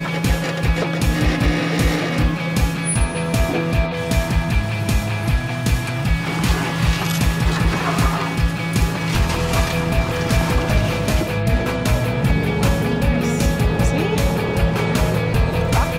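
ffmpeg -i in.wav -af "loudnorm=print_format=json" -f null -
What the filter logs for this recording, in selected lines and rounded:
"input_i" : "-19.3",
"input_tp" : "-7.6",
"input_lra" : "1.2",
"input_thresh" : "-29.3",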